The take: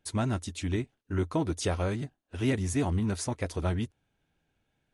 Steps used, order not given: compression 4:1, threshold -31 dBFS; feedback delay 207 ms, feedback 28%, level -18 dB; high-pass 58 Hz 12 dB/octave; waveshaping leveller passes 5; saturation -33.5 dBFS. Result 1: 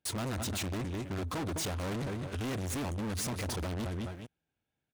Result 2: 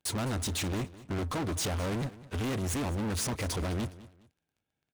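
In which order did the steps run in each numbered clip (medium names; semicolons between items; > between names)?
feedback delay > compression > waveshaping leveller > high-pass > saturation; compression > saturation > high-pass > waveshaping leveller > feedback delay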